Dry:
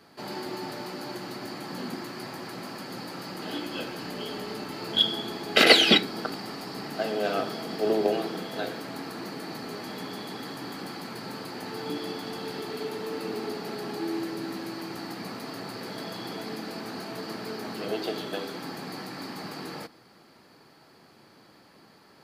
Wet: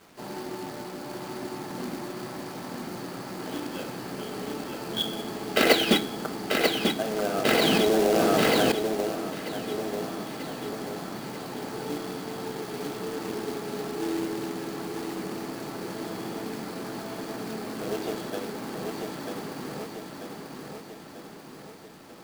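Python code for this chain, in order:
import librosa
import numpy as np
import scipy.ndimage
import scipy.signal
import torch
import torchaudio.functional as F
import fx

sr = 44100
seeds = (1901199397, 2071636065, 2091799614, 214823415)

y = fx.high_shelf(x, sr, hz=2100.0, db=-10.5)
y = fx.quant_companded(y, sr, bits=4)
y = fx.echo_feedback(y, sr, ms=940, feedback_pct=56, wet_db=-4.0)
y = fx.env_flatten(y, sr, amount_pct=100, at=(7.45, 8.72))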